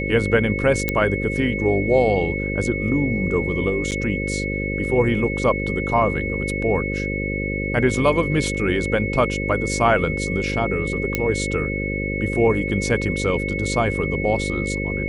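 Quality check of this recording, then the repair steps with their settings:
buzz 50 Hz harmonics 11 -26 dBFS
tone 2200 Hz -27 dBFS
0.89 pop -7 dBFS
3.91–3.92 gap 8.2 ms
11.15 pop -6 dBFS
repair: de-click; notch 2200 Hz, Q 30; de-hum 50 Hz, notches 11; interpolate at 3.91, 8.2 ms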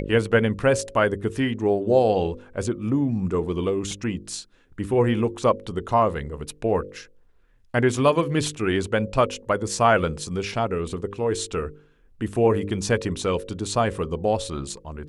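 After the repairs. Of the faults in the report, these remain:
none

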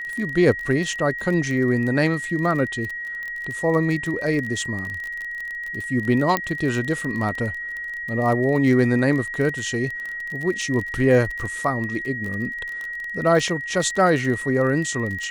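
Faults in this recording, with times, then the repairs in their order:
crackle 28/s -27 dBFS
tone 1900 Hz -28 dBFS
6.37 pop -7 dBFS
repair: de-click; notch 1900 Hz, Q 30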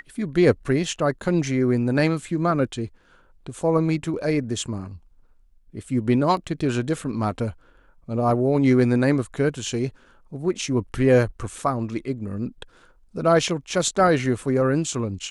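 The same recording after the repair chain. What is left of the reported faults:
6.37 pop

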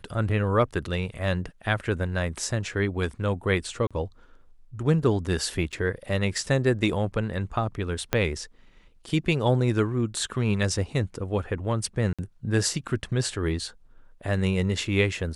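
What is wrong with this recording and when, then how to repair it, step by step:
3.87–3.91 gap 36 ms
5.72–5.73 gap 6.7 ms
8.13 pop -7 dBFS
12.13–12.19 gap 56 ms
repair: de-click; interpolate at 3.87, 36 ms; interpolate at 5.72, 6.7 ms; interpolate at 12.13, 56 ms

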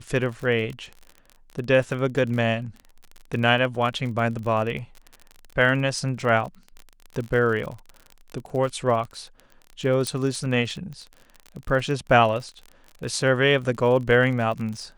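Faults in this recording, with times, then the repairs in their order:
crackle 38/s -31 dBFS
10.07 pop -13 dBFS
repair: de-click

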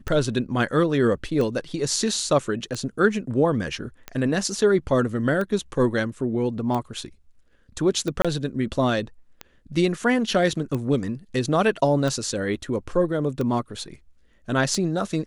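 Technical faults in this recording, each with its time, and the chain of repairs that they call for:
tick 45 rpm -16 dBFS
8.22–8.25 gap 26 ms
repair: de-click; interpolate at 8.22, 26 ms

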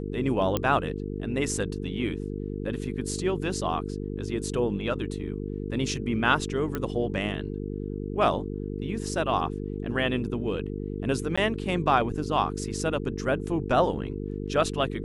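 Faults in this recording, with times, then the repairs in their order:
buzz 50 Hz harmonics 9 -33 dBFS
0.57 pop -11 dBFS
6.75 pop -16 dBFS
11.36–11.38 gap 15 ms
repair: de-click; de-hum 50 Hz, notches 9; interpolate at 11.36, 15 ms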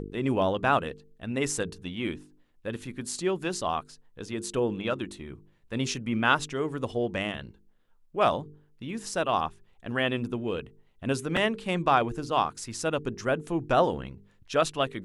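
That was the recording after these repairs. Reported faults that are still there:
none

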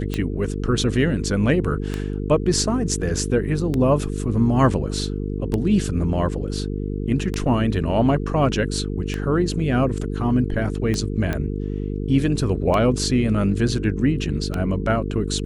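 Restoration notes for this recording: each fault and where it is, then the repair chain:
buzz 50 Hz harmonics 9 -26 dBFS
tick 33 1/3 rpm -11 dBFS
11.33 pop -12 dBFS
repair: de-click; de-hum 50 Hz, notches 9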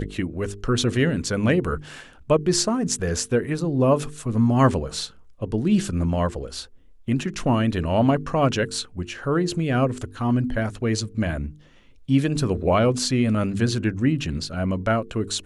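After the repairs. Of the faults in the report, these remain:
none

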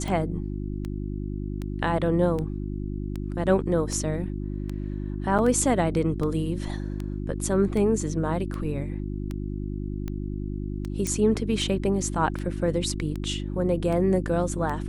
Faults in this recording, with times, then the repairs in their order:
hum 50 Hz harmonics 7 -31 dBFS
tick 78 rpm
5.38–5.39 gap 7.2 ms
11.07 pop -15 dBFS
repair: de-click; de-hum 50 Hz, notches 7; interpolate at 5.38, 7.2 ms

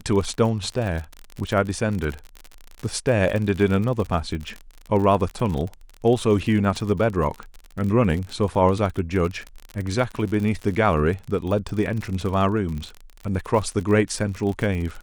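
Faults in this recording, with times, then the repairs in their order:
crackle 43/s -27 dBFS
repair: de-click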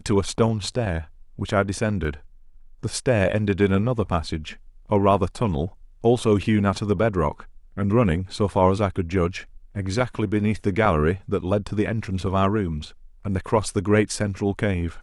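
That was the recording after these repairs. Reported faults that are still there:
none

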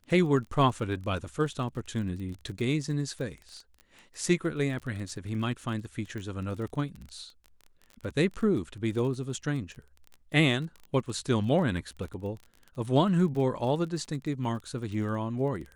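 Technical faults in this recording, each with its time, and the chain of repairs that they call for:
crackle 23/s -37 dBFS
6.18 pop -27 dBFS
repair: de-click

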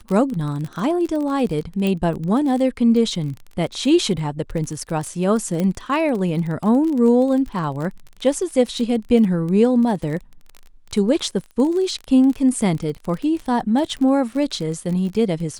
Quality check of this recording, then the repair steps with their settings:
crackle 24/s -26 dBFS
1.87 pop -11 dBFS
5.6 pop -11 dBFS
13.98–13.99 gap 7.8 ms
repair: de-click; interpolate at 13.98, 7.8 ms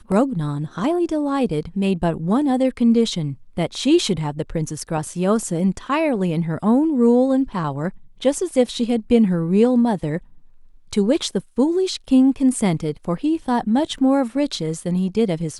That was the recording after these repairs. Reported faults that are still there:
1.87 pop
5.6 pop

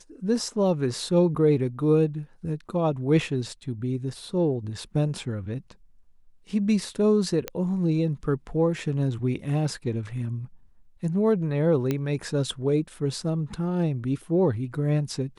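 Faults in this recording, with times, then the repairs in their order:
7.48 pop -13 dBFS
11.91 pop -13 dBFS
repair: de-click

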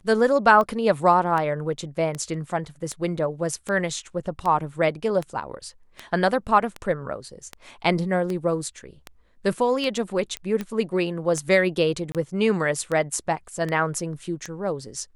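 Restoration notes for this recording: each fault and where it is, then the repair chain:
tick 78 rpm -16 dBFS
10.37 pop -15 dBFS
12.12–12.15 gap 27 ms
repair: de-click; interpolate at 12.12, 27 ms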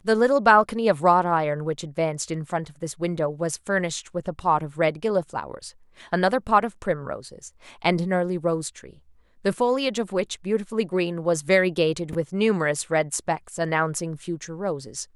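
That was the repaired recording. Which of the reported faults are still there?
none

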